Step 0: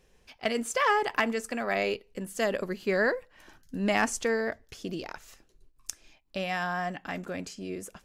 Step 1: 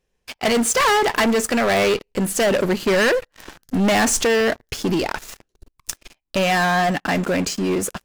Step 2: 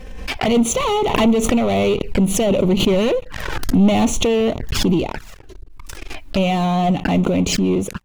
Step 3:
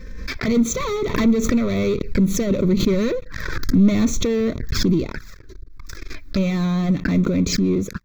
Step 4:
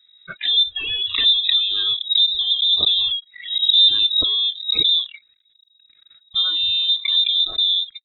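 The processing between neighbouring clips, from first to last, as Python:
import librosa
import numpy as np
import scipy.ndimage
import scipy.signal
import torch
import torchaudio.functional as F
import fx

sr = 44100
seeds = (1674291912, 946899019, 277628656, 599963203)

y1 = fx.leveller(x, sr, passes=5)
y2 = fx.bass_treble(y1, sr, bass_db=7, treble_db=-9)
y2 = fx.env_flanger(y2, sr, rest_ms=3.9, full_db=-17.5)
y2 = fx.pre_swell(y2, sr, db_per_s=39.0)
y2 = F.gain(torch.from_numpy(y2), 1.0).numpy()
y3 = fx.fixed_phaser(y2, sr, hz=2900.0, stages=6)
y4 = fx.noise_reduce_blind(y3, sr, reduce_db=24)
y4 = fx.spec_repair(y4, sr, seeds[0], start_s=3.47, length_s=0.34, low_hz=430.0, high_hz=1700.0, source='after')
y4 = fx.freq_invert(y4, sr, carrier_hz=3800)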